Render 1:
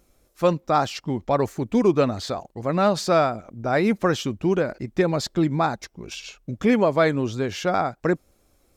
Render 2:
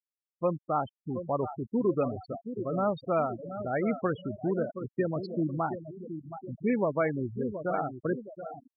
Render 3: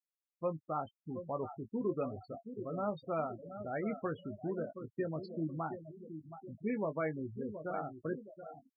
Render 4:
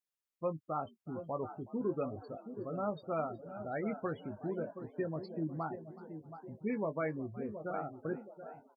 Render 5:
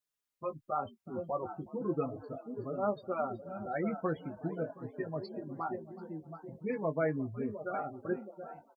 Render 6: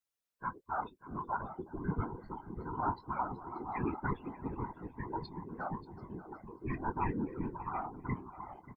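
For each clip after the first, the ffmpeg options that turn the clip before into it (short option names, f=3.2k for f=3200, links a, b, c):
-filter_complex "[0:a]asplit=2[a][b];[b]aecho=0:1:723|1446|2169|2892|3615|4338:0.335|0.174|0.0906|0.0471|0.0245|0.0127[c];[a][c]amix=inputs=2:normalize=0,afftfilt=real='re*gte(hypot(re,im),0.141)':imag='im*gte(hypot(re,im),0.141)':win_size=1024:overlap=0.75,volume=-8.5dB"
-filter_complex "[0:a]asplit=2[a][b];[b]adelay=19,volume=-9.5dB[c];[a][c]amix=inputs=2:normalize=0,volume=-8.5dB"
-filter_complex "[0:a]asplit=6[a][b][c][d][e][f];[b]adelay=370,afreqshift=74,volume=-20dB[g];[c]adelay=740,afreqshift=148,volume=-24.2dB[h];[d]adelay=1110,afreqshift=222,volume=-28.3dB[i];[e]adelay=1480,afreqshift=296,volume=-32.5dB[j];[f]adelay=1850,afreqshift=370,volume=-36.6dB[k];[a][g][h][i][j][k]amix=inputs=6:normalize=0"
-filter_complex "[0:a]asplit=2[a][b];[b]adelay=4.3,afreqshift=-0.42[c];[a][c]amix=inputs=2:normalize=1,volume=5.5dB"
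-af "afftfilt=real='real(if(between(b,1,1008),(2*floor((b-1)/24)+1)*24-b,b),0)':imag='imag(if(between(b,1,1008),(2*floor((b-1)/24)+1)*24-b,b),0)*if(between(b,1,1008),-1,1)':win_size=2048:overlap=0.75,afftfilt=real='hypot(re,im)*cos(2*PI*random(0))':imag='hypot(re,im)*sin(2*PI*random(1))':win_size=512:overlap=0.75,aecho=1:1:586:0.15,volume=4dB"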